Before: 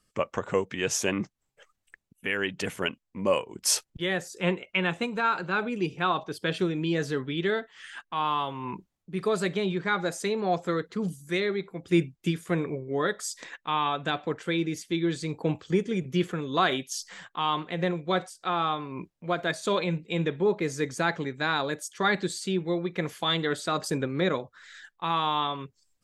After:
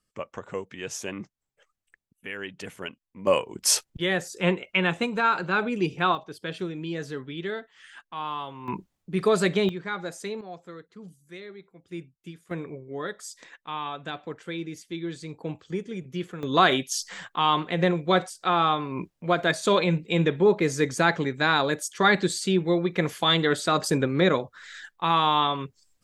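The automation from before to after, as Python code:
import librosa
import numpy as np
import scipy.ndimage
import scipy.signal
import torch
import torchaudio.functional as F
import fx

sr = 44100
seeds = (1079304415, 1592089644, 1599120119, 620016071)

y = fx.gain(x, sr, db=fx.steps((0.0, -7.0), (3.27, 3.0), (6.15, -5.0), (8.68, 5.0), (9.69, -5.0), (10.41, -14.5), (12.51, -6.0), (16.43, 5.0)))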